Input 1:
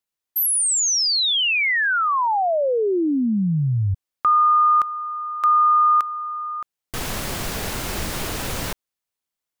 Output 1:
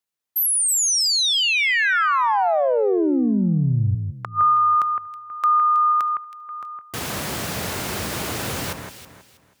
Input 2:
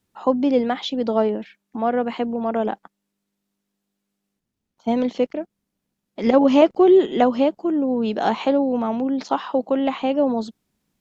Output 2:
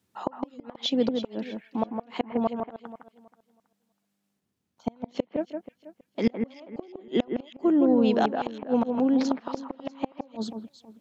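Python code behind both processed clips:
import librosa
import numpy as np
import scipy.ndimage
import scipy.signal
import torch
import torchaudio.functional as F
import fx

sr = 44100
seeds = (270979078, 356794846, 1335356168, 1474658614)

p1 = scipy.signal.sosfilt(scipy.signal.butter(4, 75.0, 'highpass', fs=sr, output='sos'), x)
p2 = fx.gate_flip(p1, sr, shuts_db=-12.0, range_db=-35)
y = p2 + fx.echo_alternate(p2, sr, ms=161, hz=2200.0, feedback_pct=51, wet_db=-5.5, dry=0)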